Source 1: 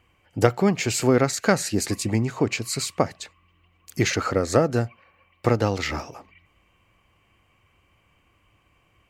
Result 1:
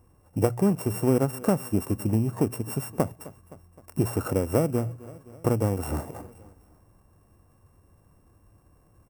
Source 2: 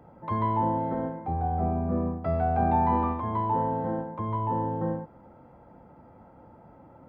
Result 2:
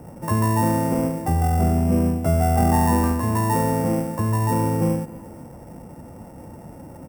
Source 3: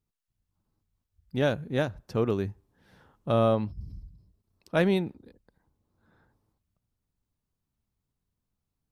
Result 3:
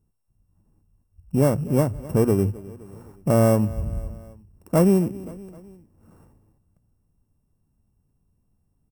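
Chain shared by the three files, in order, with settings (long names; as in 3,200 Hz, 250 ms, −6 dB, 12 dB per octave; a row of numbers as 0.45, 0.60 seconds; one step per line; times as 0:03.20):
samples sorted by size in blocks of 16 samples
drawn EQ curve 140 Hz 0 dB, 1,100 Hz −6 dB, 3,200 Hz −27 dB, 9,200 Hz −7 dB
repeating echo 259 ms, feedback 51%, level −23.5 dB
downward compressor 1.5 to 1, threshold −39 dBFS
mains-hum notches 60/120 Hz
normalise the peak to −6 dBFS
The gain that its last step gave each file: +7.5, +15.0, +15.5 decibels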